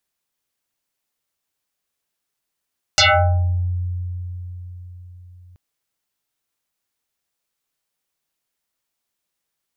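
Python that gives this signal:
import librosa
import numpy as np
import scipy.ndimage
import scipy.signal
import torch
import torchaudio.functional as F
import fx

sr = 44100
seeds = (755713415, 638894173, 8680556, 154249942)

y = fx.fm2(sr, length_s=2.58, level_db=-9.5, carrier_hz=89.4, ratio=7.88, index=9.7, index_s=0.68, decay_s=4.57, shape='exponential')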